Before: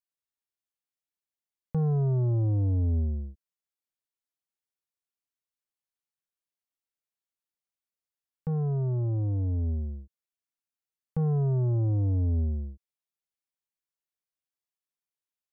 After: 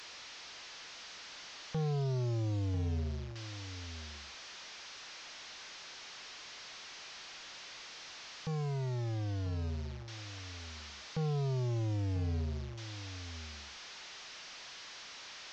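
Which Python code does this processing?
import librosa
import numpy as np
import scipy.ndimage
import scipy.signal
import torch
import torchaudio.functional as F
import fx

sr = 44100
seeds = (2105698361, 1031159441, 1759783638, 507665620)

y = fx.delta_mod(x, sr, bps=32000, step_db=-43.0)
y = fx.low_shelf(y, sr, hz=450.0, db=-11.0)
y = y + 10.0 ** (-12.0 / 20.0) * np.pad(y, (int(993 * sr / 1000.0), 0))[:len(y)]
y = y * librosa.db_to_amplitude(1.5)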